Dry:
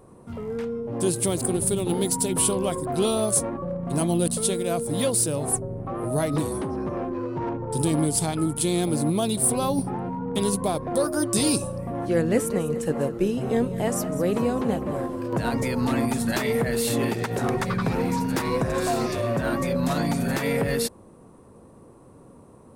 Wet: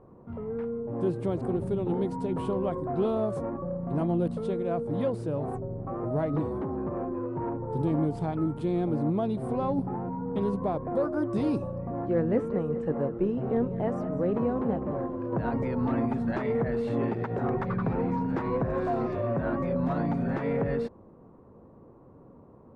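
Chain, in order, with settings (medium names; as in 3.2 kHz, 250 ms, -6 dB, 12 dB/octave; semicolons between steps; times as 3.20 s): low-pass 1.3 kHz 12 dB/octave; in parallel at -11 dB: saturation -20.5 dBFS, distortion -15 dB; on the sum: trim -5 dB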